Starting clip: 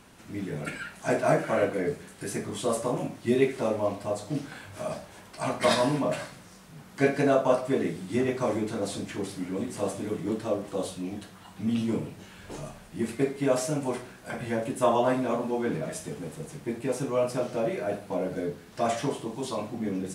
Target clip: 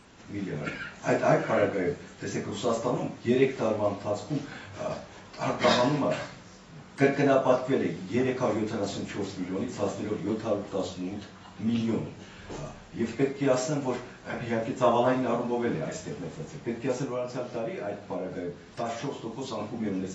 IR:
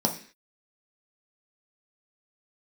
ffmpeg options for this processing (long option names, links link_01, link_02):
-filter_complex "[0:a]asettb=1/sr,asplit=3[link_01][link_02][link_03];[link_01]atrim=end=17.044[link_04];[link_02]atrim=start=17.04:end=19.6,asetpts=PTS-STARTPTS,afade=type=in:duration=0.004:curve=qsin,afade=type=out:start_time=2.556:duration=0.004:curve=qsin,acompressor=threshold=-33dB:ratio=2[link_05];[link_03]atrim=start=19.596[link_06];[link_04][link_05]acrossfade=duration=0.004:curve1=hsin:curve2=qsin[link_07];[link_07][link_06]acrossfade=duration=0.004:curve1=qsin:curve2=hsin" -ar 24000 -c:a aac -b:a 24k